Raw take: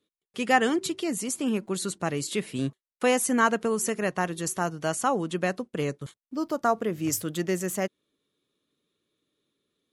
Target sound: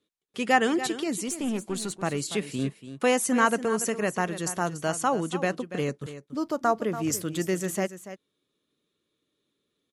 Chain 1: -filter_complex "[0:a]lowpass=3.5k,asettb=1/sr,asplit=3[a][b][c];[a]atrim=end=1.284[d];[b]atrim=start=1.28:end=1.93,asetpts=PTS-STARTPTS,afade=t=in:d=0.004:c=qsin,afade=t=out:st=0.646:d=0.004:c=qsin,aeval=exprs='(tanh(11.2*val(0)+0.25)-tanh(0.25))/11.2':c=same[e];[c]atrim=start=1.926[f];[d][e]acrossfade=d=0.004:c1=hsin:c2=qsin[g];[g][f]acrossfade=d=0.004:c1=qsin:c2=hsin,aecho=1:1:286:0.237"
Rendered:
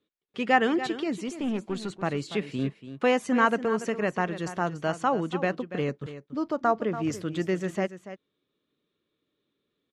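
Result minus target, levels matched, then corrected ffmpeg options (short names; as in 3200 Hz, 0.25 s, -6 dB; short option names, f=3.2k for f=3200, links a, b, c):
8000 Hz band -13.5 dB
-filter_complex "[0:a]lowpass=12k,asettb=1/sr,asplit=3[a][b][c];[a]atrim=end=1.284[d];[b]atrim=start=1.28:end=1.93,asetpts=PTS-STARTPTS,afade=t=in:d=0.004:c=qsin,afade=t=out:st=0.646:d=0.004:c=qsin,aeval=exprs='(tanh(11.2*val(0)+0.25)-tanh(0.25))/11.2':c=same[e];[c]atrim=start=1.926[f];[d][e]acrossfade=d=0.004:c1=hsin:c2=qsin[g];[g][f]acrossfade=d=0.004:c1=qsin:c2=hsin,aecho=1:1:286:0.237"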